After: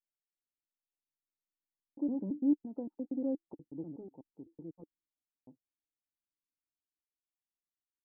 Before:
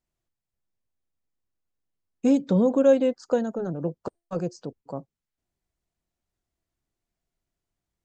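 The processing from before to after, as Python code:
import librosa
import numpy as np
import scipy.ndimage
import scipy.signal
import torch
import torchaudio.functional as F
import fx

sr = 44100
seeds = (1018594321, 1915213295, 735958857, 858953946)

y = fx.block_reorder(x, sr, ms=118.0, group=6)
y = fx.doppler_pass(y, sr, speed_mps=28, closest_m=30.0, pass_at_s=3.08)
y = fx.formant_cascade(y, sr, vowel='u')
y = F.gain(torch.from_numpy(y), -5.0).numpy()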